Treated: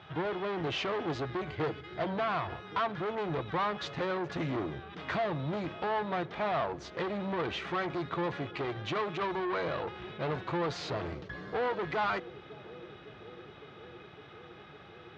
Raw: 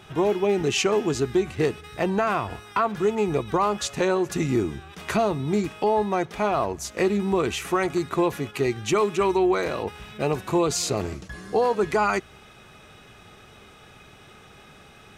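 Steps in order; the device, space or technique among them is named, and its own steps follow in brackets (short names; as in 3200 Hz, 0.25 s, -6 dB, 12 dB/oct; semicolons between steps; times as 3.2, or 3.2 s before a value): 1.46–2.13 ripple EQ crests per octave 1.8, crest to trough 7 dB; analogue delay pedal into a guitar amplifier (analogue delay 0.558 s, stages 2048, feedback 85%, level -22 dB; tube stage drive 26 dB, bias 0.45; speaker cabinet 100–3800 Hz, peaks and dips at 220 Hz -9 dB, 390 Hz -7 dB, 2600 Hz -5 dB)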